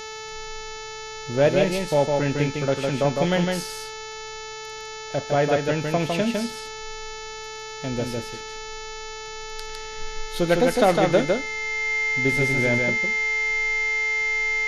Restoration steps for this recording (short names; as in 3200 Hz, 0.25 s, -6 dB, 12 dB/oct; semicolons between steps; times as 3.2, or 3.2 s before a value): de-hum 437.4 Hz, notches 16; notch 2100 Hz, Q 30; inverse comb 0.156 s -3.5 dB